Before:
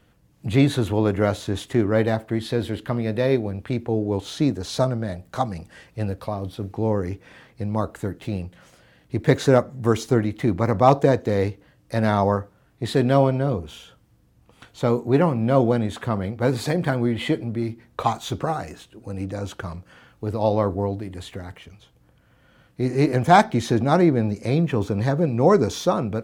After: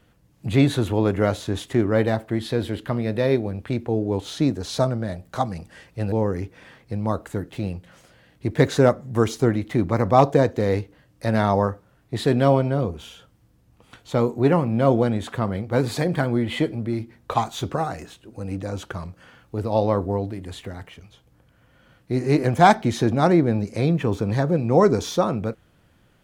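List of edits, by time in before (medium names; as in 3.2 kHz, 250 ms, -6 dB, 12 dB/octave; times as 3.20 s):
6.12–6.81 s: delete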